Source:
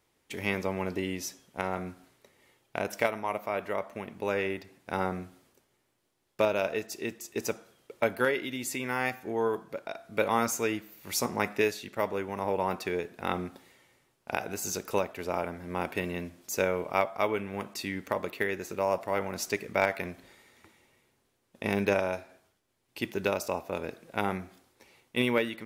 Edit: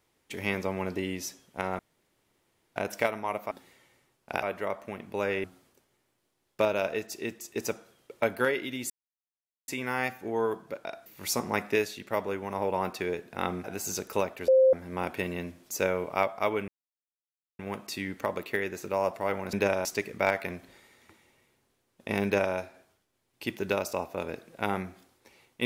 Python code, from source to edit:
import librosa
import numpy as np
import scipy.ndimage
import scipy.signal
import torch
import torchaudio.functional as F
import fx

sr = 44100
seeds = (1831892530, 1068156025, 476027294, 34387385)

y = fx.edit(x, sr, fx.room_tone_fill(start_s=1.79, length_s=0.97),
    fx.cut(start_s=4.52, length_s=0.72),
    fx.insert_silence(at_s=8.7, length_s=0.78),
    fx.cut(start_s=10.08, length_s=0.84),
    fx.move(start_s=13.5, length_s=0.92, to_s=3.51),
    fx.bleep(start_s=15.26, length_s=0.25, hz=524.0, db=-16.0),
    fx.insert_silence(at_s=17.46, length_s=0.91),
    fx.duplicate(start_s=21.79, length_s=0.32, to_s=19.4), tone=tone)